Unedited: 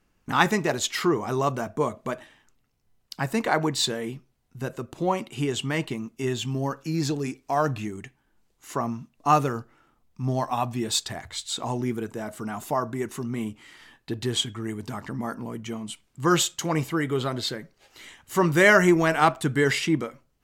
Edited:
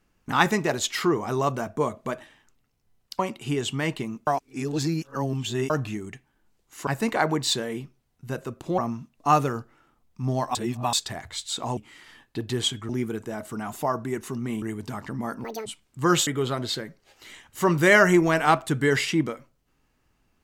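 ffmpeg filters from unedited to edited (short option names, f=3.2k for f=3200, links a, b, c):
-filter_complex "[0:a]asplit=14[a][b][c][d][e][f][g][h][i][j][k][l][m][n];[a]atrim=end=3.192[o];[b]atrim=start=5.098:end=6.182[p];[c]atrim=start=6.178:end=7.612,asetpts=PTS-STARTPTS,areverse[q];[d]atrim=start=7.608:end=8.782[r];[e]atrim=start=3.188:end=5.102[s];[f]atrim=start=8.778:end=10.552[t];[g]atrim=start=10.548:end=10.932,asetpts=PTS-STARTPTS,areverse[u];[h]atrim=start=10.928:end=11.772[v];[i]atrim=start=13.498:end=14.622[w];[j]atrim=start=11.768:end=13.502[x];[k]atrim=start=14.618:end=15.444[y];[l]atrim=start=15.44:end=15.87,asetpts=PTS-STARTPTS,asetrate=86877,aresample=44100[z];[m]atrim=start=15.866:end=16.482[aa];[n]atrim=start=17.008[ab];[o][p]acrossfade=d=0.004:c1=hsin:c2=hsin[ac];[ac][q]acrossfade=d=0.004:c1=hsin:c2=hsin[ad];[ad][r]acrossfade=d=0.004:c1=hsin:c2=hsin[ae];[ae][s]acrossfade=d=0.004:c1=hsin:c2=hsin[af];[af][t]acrossfade=d=0.004:c1=hsin:c2=hsin[ag];[ag][u]acrossfade=d=0.004:c1=hsin:c2=hsin[ah];[ah][v]acrossfade=d=0.004:c1=hsin:c2=hsin[ai];[ai][w]acrossfade=d=0.004:c1=hsin:c2=hsin[aj];[aj][x]acrossfade=d=0.004:c1=hsin:c2=hsin[ak];[ak][y]acrossfade=d=0.004:c1=hsin:c2=hsin[al];[al][z]acrossfade=d=0.004:c1=hsin:c2=hsin[am];[am][aa]acrossfade=d=0.004:c1=hsin:c2=hsin[an];[an][ab]acrossfade=d=0.004:c1=hsin:c2=hsin"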